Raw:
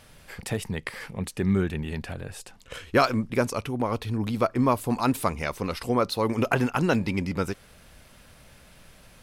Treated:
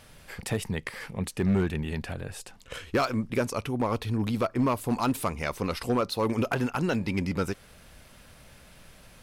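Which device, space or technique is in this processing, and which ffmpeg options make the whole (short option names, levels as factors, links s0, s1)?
limiter into clipper: -af "alimiter=limit=0.211:level=0:latency=1:release=326,asoftclip=type=hard:threshold=0.119"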